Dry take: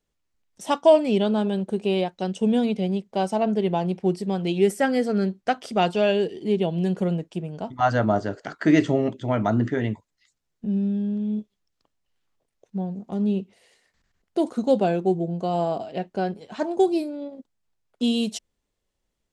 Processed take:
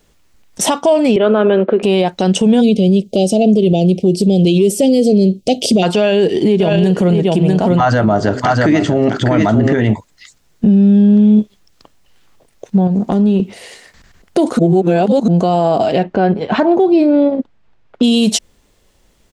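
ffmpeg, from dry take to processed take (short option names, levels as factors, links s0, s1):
-filter_complex "[0:a]asettb=1/sr,asplit=3[s0][s1][s2];[s0]atrim=end=1.164[s3];[s1]atrim=start=1.16:end=1.83,asetpts=PTS-STARTPTS,afade=t=in:d=0.004:c=qsin,afade=t=out:st=0.666:d=0.004:c=qsin,highpass=f=270:w=0.5412,highpass=f=270:w=1.3066,equalizer=f=540:t=q:w=4:g=4,equalizer=f=840:t=q:w=4:g=-7,equalizer=f=1300:t=q:w=4:g=7,lowpass=f=2700:w=0.5412,lowpass=f=2700:w=1.3066[s4];[s2]atrim=start=1.826[s5];[s3][s4]acrossfade=d=0.004:c1=hsin:c2=qsin[s6];[s6][s5]acrossfade=d=0.004:c1=qsin:c2=hsin,asplit=3[s7][s8][s9];[s7]afade=t=out:st=2.6:d=0.02[s10];[s8]asuperstop=centerf=1300:order=8:qfactor=0.63,afade=t=in:st=2.6:d=0.02,afade=t=out:st=5.82:d=0.02[s11];[s9]afade=t=in:st=5.82:d=0.02[s12];[s10][s11][s12]amix=inputs=3:normalize=0,asplit=3[s13][s14][s15];[s13]afade=t=out:st=6.59:d=0.02[s16];[s14]aecho=1:1:646:0.398,afade=t=in:st=6.59:d=0.02,afade=t=out:st=9.92:d=0.02[s17];[s15]afade=t=in:st=9.92:d=0.02[s18];[s16][s17][s18]amix=inputs=3:normalize=0,asettb=1/sr,asplit=3[s19][s20][s21];[s19]atrim=end=12.874[s22];[s20]atrim=start=12.87:end=13.4,asetpts=PTS-STARTPTS,afade=t=in:d=0.004:c=qsin,afade=t=out:st=0.526:d=0.004:c=qsin,acompressor=threshold=0.0224:ratio=8:attack=3.2:release=140:knee=1:detection=peak[s23];[s21]atrim=start=13.396[s24];[s22][s23]acrossfade=d=0.004:c1=hsin:c2=qsin[s25];[s25][s24]acrossfade=d=0.004:c1=qsin:c2=hsin,asettb=1/sr,asplit=3[s26][s27][s28];[s26]atrim=end=16.034[s29];[s27]atrim=start=16.03:end=18.03,asetpts=PTS-STARTPTS,afade=t=in:d=0.004:c=qsin,afade=t=out:st=1.996:d=0.004:c=qsin,lowpass=2700[s30];[s28]atrim=start=18.026[s31];[s29][s30]acrossfade=d=0.004:c1=hsin:c2=qsin[s32];[s32][s31]acrossfade=d=0.004:c1=qsin:c2=hsin,asplit=3[s33][s34][s35];[s33]atrim=end=14.592[s36];[s34]atrim=start=14.588:end=15.282,asetpts=PTS-STARTPTS,areverse[s37];[s35]atrim=start=15.278[s38];[s36][s37]acrossfade=d=0.004:c1=hsin:c2=hsin[s39];[s39][s38]acrossfade=d=0.004:c1=hsin:c2=hsin,acompressor=threshold=0.0398:ratio=4,alimiter=level_in=22.4:limit=0.891:release=50:level=0:latency=1,volume=0.708"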